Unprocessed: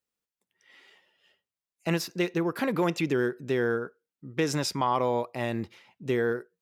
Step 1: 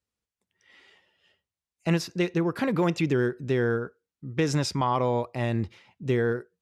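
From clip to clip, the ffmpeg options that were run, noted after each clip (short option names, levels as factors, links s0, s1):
-af "lowpass=9400,equalizer=f=65:t=o:w=1.9:g=15"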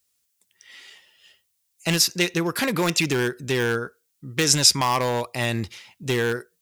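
-af "volume=8.41,asoftclip=hard,volume=0.119,crystalizer=i=9:c=0"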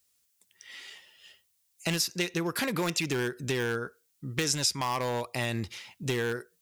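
-af "acompressor=threshold=0.0316:ratio=2.5"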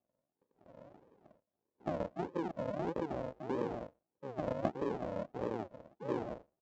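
-af "aresample=16000,acrusher=samples=32:mix=1:aa=0.000001:lfo=1:lforange=19.2:lforate=1.6,aresample=44100,bandpass=f=560:t=q:w=2.1:csg=0,volume=1.5"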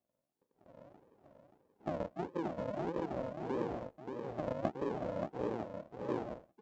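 -af "aecho=1:1:579:0.501,volume=0.891"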